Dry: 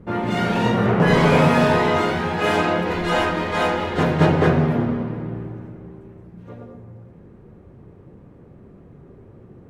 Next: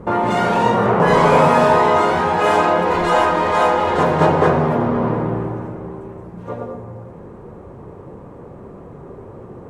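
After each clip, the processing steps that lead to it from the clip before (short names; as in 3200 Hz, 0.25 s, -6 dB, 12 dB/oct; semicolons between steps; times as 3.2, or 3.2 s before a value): graphic EQ 500/1000/8000 Hz +6/+11/+7 dB; in parallel at -2.5 dB: negative-ratio compressor -23 dBFS, ratio -1; on the sum: gain -4 dB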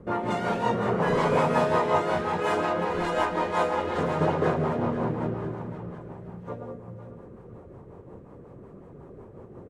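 feedback echo 0.504 s, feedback 41%, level -10.5 dB; rotary speaker horn 5.5 Hz; gain -8 dB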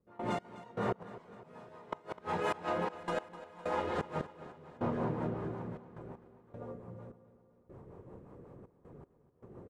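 step gate ".x..xxx...xxxxx" 78 bpm -24 dB; flipped gate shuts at -15 dBFS, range -29 dB; feedback echo 0.254 s, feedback 59%, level -16 dB; gain -6.5 dB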